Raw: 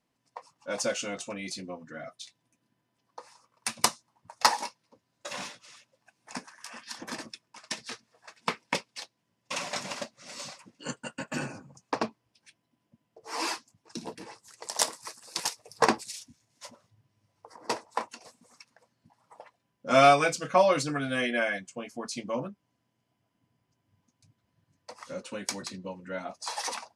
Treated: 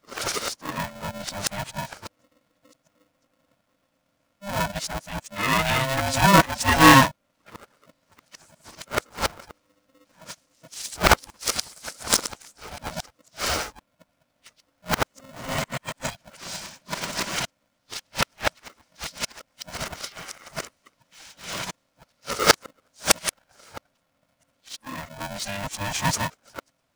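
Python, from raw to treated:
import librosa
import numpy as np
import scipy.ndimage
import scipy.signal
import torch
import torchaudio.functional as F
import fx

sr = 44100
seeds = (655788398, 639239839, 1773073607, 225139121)

y = np.flip(x).copy()
y = y * np.sign(np.sin(2.0 * np.pi * 400.0 * np.arange(len(y)) / sr))
y = y * 10.0 ** (6.0 / 20.0)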